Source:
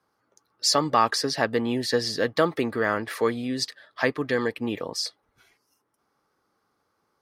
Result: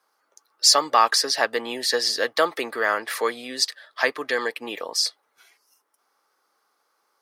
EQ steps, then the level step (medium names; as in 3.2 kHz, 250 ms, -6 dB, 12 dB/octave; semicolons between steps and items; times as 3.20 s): high-pass 550 Hz 12 dB/octave; treble shelf 4.4 kHz +5.5 dB; +3.5 dB